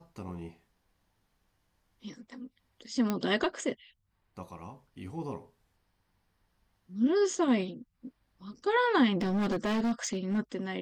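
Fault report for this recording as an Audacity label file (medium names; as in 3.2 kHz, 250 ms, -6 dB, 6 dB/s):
3.100000	3.100000	pop -16 dBFS
9.210000	10.390000	clipped -26 dBFS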